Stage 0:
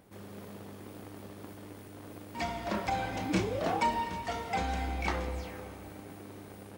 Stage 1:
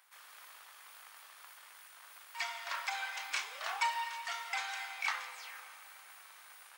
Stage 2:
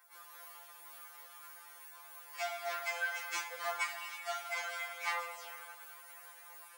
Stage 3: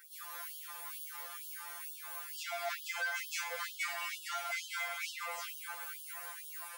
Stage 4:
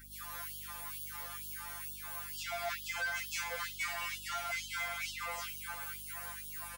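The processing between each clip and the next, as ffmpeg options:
-af "highpass=f=1.1k:w=0.5412,highpass=f=1.1k:w=1.3066,volume=2dB"
-af "equalizer=f=3.4k:w=0.37:g=-11.5,flanger=delay=8.4:depth=6.8:regen=-44:speed=0.5:shape=triangular,afftfilt=real='re*2.83*eq(mod(b,8),0)':imag='im*2.83*eq(mod(b,8),0)':win_size=2048:overlap=0.75,volume=14dB"
-filter_complex "[0:a]asplit=2[a][b];[b]acompressor=threshold=-45dB:ratio=6,volume=3dB[c];[a][c]amix=inputs=2:normalize=0,asoftclip=type=tanh:threshold=-32dB,afftfilt=real='re*gte(b*sr/1024,360*pow(2900/360,0.5+0.5*sin(2*PI*2.2*pts/sr)))':imag='im*gte(b*sr/1024,360*pow(2900/360,0.5+0.5*sin(2*PI*2.2*pts/sr)))':win_size=1024:overlap=0.75,volume=1dB"
-filter_complex "[0:a]aeval=exprs='val(0)+0.00141*(sin(2*PI*50*n/s)+sin(2*PI*2*50*n/s)/2+sin(2*PI*3*50*n/s)/3+sin(2*PI*4*50*n/s)/4+sin(2*PI*5*50*n/s)/5)':c=same,aecho=1:1:506:0.0708,asplit=2[a][b];[b]asoftclip=type=tanh:threshold=-37.5dB,volume=-3dB[c];[a][c]amix=inputs=2:normalize=0,volume=-3dB"

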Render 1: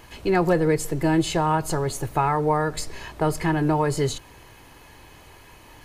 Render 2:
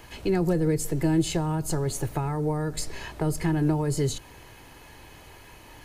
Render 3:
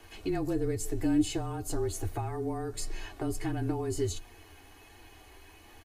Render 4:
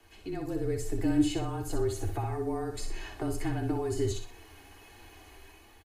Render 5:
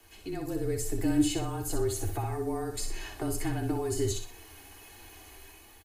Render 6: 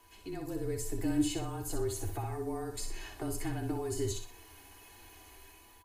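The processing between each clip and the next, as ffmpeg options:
-filter_complex "[0:a]acrossover=split=370|5100[a][b][c];[b]acompressor=threshold=-33dB:ratio=5[d];[a][d][c]amix=inputs=3:normalize=0,equalizer=f=1.1k:w=6.7:g=-3.5"
-af "flanger=delay=7.9:depth=1.8:regen=35:speed=1.4:shape=triangular,afreqshift=-28,aecho=1:1:2.7:0.53,volume=-3dB"
-filter_complex "[0:a]acrossover=split=150|550|4600[a][b][c][d];[d]alimiter=level_in=11.5dB:limit=-24dB:level=0:latency=1:release=333,volume=-11.5dB[e];[a][b][c][e]amix=inputs=4:normalize=0,aecho=1:1:61|122|183|244:0.473|0.151|0.0485|0.0155,dynaudnorm=f=110:g=11:m=7.5dB,volume=-7dB"
-af "crystalizer=i=1.5:c=0"
-af "aeval=exprs='val(0)+0.001*sin(2*PI*990*n/s)':c=same,volume=-4.5dB"

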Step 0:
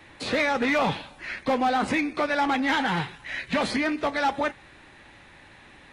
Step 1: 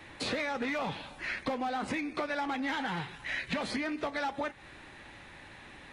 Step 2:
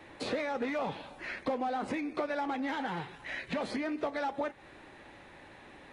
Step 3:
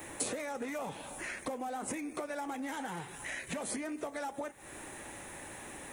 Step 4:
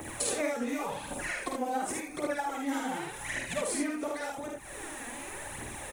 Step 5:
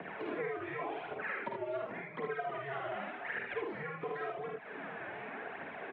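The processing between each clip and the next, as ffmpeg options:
-af "acompressor=threshold=-31dB:ratio=6"
-af "equalizer=f=480:t=o:w=2.4:g=8.5,volume=-6dB"
-af "acompressor=threshold=-46dB:ratio=2.5,aexciter=amount=15.7:drive=2.4:freq=6.6k,volume=5dB"
-filter_complex "[0:a]aphaser=in_gain=1:out_gain=1:delay=4.4:decay=0.69:speed=0.89:type=triangular,asplit=2[a][b];[b]aecho=0:1:50|76:0.668|0.668[c];[a][c]amix=inputs=2:normalize=0"
-filter_complex "[0:a]acrossover=split=510|2200[a][b][c];[a]acompressor=threshold=-45dB:ratio=4[d];[b]acompressor=threshold=-38dB:ratio=4[e];[c]acompressor=threshold=-47dB:ratio=4[f];[d][e][f]amix=inputs=3:normalize=0,highpass=f=370:t=q:w=0.5412,highpass=f=370:t=q:w=1.307,lowpass=f=3k:t=q:w=0.5176,lowpass=f=3k:t=q:w=0.7071,lowpass=f=3k:t=q:w=1.932,afreqshift=-140,volume=1dB"

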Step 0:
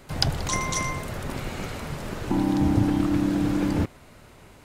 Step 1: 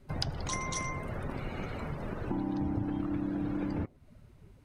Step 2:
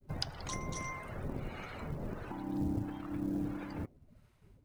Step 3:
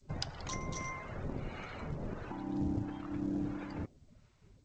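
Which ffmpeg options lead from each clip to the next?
-af "afftdn=nr=18:nf=-40,bandreject=f=7.2k:w=9.8,acompressor=threshold=-35dB:ratio=2.5"
-filter_complex "[0:a]agate=range=-33dB:threshold=-53dB:ratio=3:detection=peak,acrossover=split=720[a][b];[a]aeval=exprs='val(0)*(1-0.7/2+0.7/2*cos(2*PI*1.5*n/s))':c=same[c];[b]aeval=exprs='val(0)*(1-0.7/2-0.7/2*cos(2*PI*1.5*n/s))':c=same[d];[c][d]amix=inputs=2:normalize=0,acrusher=bits=8:mode=log:mix=0:aa=0.000001,volume=-1dB"
-ar 16000 -c:a g722

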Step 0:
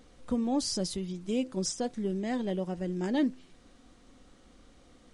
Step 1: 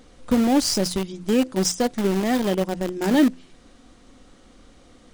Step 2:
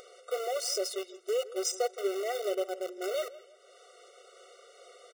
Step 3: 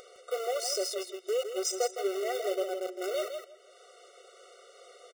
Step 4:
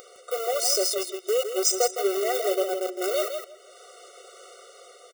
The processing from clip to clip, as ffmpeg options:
-filter_complex "[0:a]bandreject=f=60:t=h:w=6,bandreject=f=120:t=h:w=6,bandreject=f=180:t=h:w=6,asplit=2[a][b];[b]acrusher=bits=4:mix=0:aa=0.000001,volume=-6.5dB[c];[a][c]amix=inputs=2:normalize=0,volume=7dB"
-filter_complex "[0:a]acompressor=mode=upward:threshold=-31dB:ratio=2.5,asplit=2[a][b];[b]adelay=164,lowpass=f=2.9k:p=1,volume=-17dB,asplit=2[c][d];[d]adelay=164,lowpass=f=2.9k:p=1,volume=0.34,asplit=2[e][f];[f]adelay=164,lowpass=f=2.9k:p=1,volume=0.34[g];[a][c][e][g]amix=inputs=4:normalize=0,afftfilt=real='re*eq(mod(floor(b*sr/1024/380),2),1)':imag='im*eq(mod(floor(b*sr/1024/380),2),1)':win_size=1024:overlap=0.75,volume=-5.5dB"
-af "aecho=1:1:161:0.422"
-af "aemphasis=mode=production:type=50fm,dynaudnorm=f=110:g=9:m=3dB,equalizer=f=250:t=o:w=1:g=6,equalizer=f=1k:t=o:w=1:g=5,equalizer=f=16k:t=o:w=1:g=-6,volume=1dB"

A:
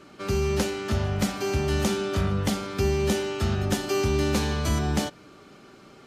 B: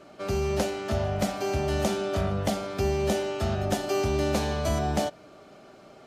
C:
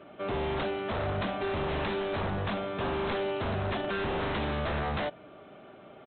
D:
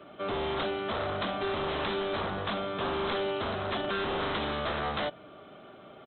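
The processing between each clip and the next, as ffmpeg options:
-af "equalizer=f=650:w=2.8:g=13.5,volume=-3.5dB"
-af "highpass=50,aresample=8000,aeval=exprs='0.0501*(abs(mod(val(0)/0.0501+3,4)-2)-1)':c=same,aresample=44100"
-filter_complex "[0:a]superequalizer=10b=1.41:13b=1.78,acrossover=split=220|1800[a][b][c];[a]alimiter=level_in=14.5dB:limit=-24dB:level=0:latency=1,volume=-14.5dB[d];[d][b][c]amix=inputs=3:normalize=0"

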